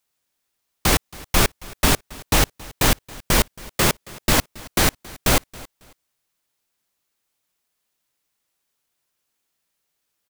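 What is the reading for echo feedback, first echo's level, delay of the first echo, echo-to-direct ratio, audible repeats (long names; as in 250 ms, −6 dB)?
24%, −21.5 dB, 274 ms, −21.5 dB, 2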